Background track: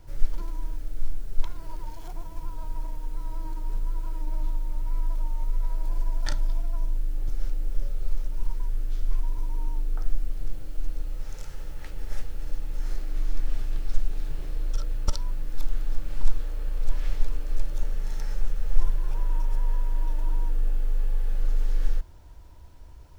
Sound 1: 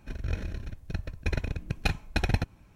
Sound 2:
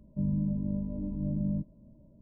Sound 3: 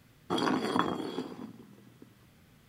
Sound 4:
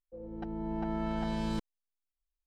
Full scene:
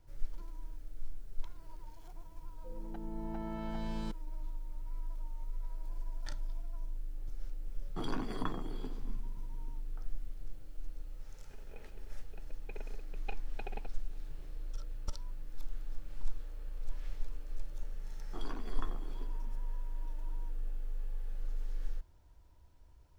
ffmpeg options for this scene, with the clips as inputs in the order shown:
-filter_complex "[3:a]asplit=2[a][b];[0:a]volume=-13.5dB[c];[a]equalizer=f=110:w=1.1:g=12[d];[1:a]highpass=f=230:w=0.5412,highpass=f=230:w=1.3066,equalizer=f=300:t=q:w=4:g=-9,equalizer=f=420:t=q:w=4:g=10,equalizer=f=810:t=q:w=4:g=8,equalizer=f=1.2k:t=q:w=4:g=-7,equalizer=f=1.8k:t=q:w=4:g=-9,equalizer=f=2.6k:t=q:w=4:g=3,lowpass=f=3k:w=0.5412,lowpass=f=3k:w=1.3066[e];[b]asplit=2[f][g];[g]adelay=14,volume=-10.5dB[h];[f][h]amix=inputs=2:normalize=0[i];[4:a]atrim=end=2.46,asetpts=PTS-STARTPTS,volume=-7dB,afade=t=in:d=0.004:c=hsin,afade=t=out:st=2.456:d=0.004:c=hsin,adelay=2520[j];[d]atrim=end=2.68,asetpts=PTS-STARTPTS,volume=-11.5dB,afade=t=in:d=0.004:c=hsin,afade=t=out:st=2.676:d=0.004:c=hsin,adelay=7660[k];[e]atrim=end=2.75,asetpts=PTS-STARTPTS,volume=-16.5dB,afade=t=in:d=0.004:c=hsin,afade=t=out:st=2.746:d=0.004:c=hsin,adelay=11430[l];[i]atrim=end=2.68,asetpts=PTS-STARTPTS,volume=-17.5dB,afade=t=in:d=0.004:c=hsin,afade=t=out:st=2.676:d=0.004:c=hsin,adelay=18030[m];[c][j][k][l][m]amix=inputs=5:normalize=0"

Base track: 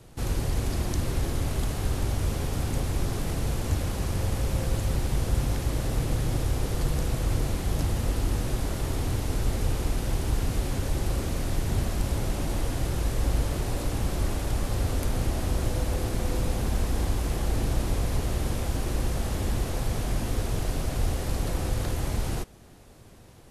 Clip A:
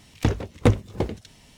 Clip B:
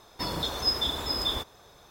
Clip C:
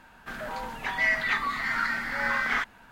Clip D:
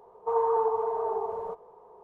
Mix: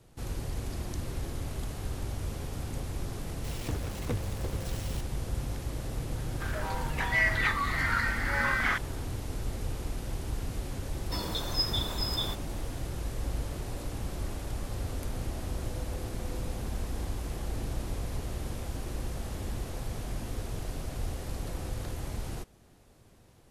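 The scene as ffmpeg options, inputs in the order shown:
-filter_complex "[0:a]volume=-8dB[a];[1:a]aeval=exprs='val(0)+0.5*0.0841*sgn(val(0))':c=same[b];[2:a]highshelf=f=7.9k:g=5.5[c];[b]atrim=end=1.57,asetpts=PTS-STARTPTS,volume=-17.5dB,afade=t=in:d=0.004:c=hsin,afade=t=out:st=1.566:d=0.004:c=hsin,adelay=3440[d];[3:a]atrim=end=2.91,asetpts=PTS-STARTPTS,volume=-1.5dB,afade=t=in:d=0.004:c=hsin,afade=t=out:st=2.906:d=0.004:c=hsin,adelay=6140[e];[c]atrim=end=1.9,asetpts=PTS-STARTPTS,volume=-5dB,afade=t=in:d=0.004:c=hsin,afade=t=out:st=1.896:d=0.004:c=hsin,adelay=10920[f];[a][d][e][f]amix=inputs=4:normalize=0"

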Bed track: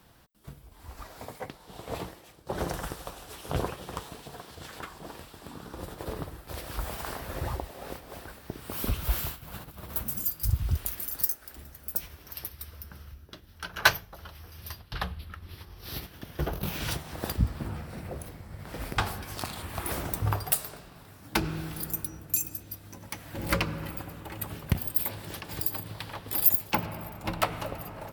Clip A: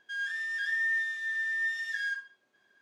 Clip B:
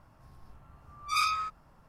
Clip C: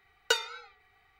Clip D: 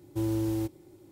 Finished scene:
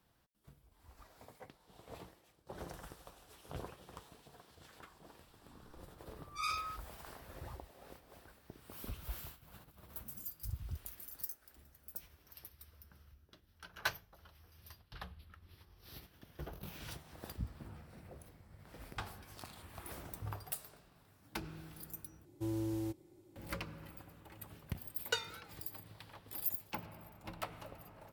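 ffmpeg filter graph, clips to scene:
-filter_complex "[0:a]volume=-15.5dB,asplit=2[a][b];[a]atrim=end=22.254[c];[4:a]atrim=end=1.11,asetpts=PTS-STARTPTS,volume=-8.5dB[d];[b]atrim=start=23.356[e];[2:a]atrim=end=1.88,asetpts=PTS-STARTPTS,volume=-10dB,afade=t=in:d=0.004:c=hsin,afade=t=out:st=1.876:d=0.004:c=hsin,adelay=5270[f];[3:a]atrim=end=1.19,asetpts=PTS-STARTPTS,volume=-9dB,afade=t=in:d=0.004:c=hsin,afade=t=out:st=1.186:d=0.004:c=hsin,adelay=24820[g];[c][d]acrossfade=d=0.004:c1=hsin:c2=hsin[h];[h][e]acrossfade=d=0.004:c1=hsin:c2=hsin[i];[i][f][g]amix=inputs=3:normalize=0"

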